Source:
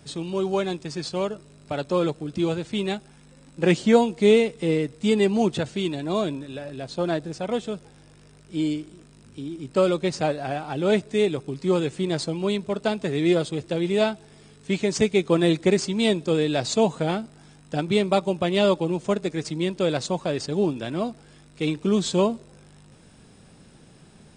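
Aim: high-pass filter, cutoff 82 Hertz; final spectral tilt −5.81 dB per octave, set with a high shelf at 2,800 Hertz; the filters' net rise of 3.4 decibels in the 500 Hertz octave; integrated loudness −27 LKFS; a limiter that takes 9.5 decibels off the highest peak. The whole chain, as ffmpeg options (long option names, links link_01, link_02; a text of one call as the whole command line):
ffmpeg -i in.wav -af "highpass=82,equalizer=frequency=500:width_type=o:gain=4.5,highshelf=frequency=2800:gain=-8.5,volume=-3dB,alimiter=limit=-15dB:level=0:latency=1" out.wav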